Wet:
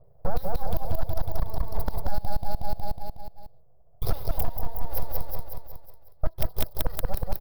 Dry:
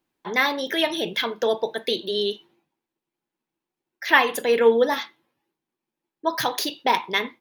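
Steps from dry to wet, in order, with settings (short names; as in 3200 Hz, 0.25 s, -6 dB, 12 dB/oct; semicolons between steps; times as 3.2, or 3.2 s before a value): Wiener smoothing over 41 samples; bands offset in time lows, highs 40 ms, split 3800 Hz; in parallel at -1.5 dB: vocal rider 2 s; on the sum: bell 790 Hz -4.5 dB 0.27 oct; full-wave rectifier; EQ curve 150 Hz 0 dB, 250 Hz -27 dB, 420 Hz -6 dB, 670 Hz -6 dB, 1600 Hz -23 dB, 3000 Hz -28 dB, 4800 Hz -12 dB, 7100 Hz -28 dB, 10000 Hz -7 dB, 15000 Hz +9 dB; flipped gate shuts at -18 dBFS, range -28 dB; on a send: feedback echo 0.183 s, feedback 53%, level -4 dB; on the sum: compressor 6:1, threshold -38 dBFS, peak gain reduction 16 dB; sine folder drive 18 dB, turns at -15 dBFS; gain +2.5 dB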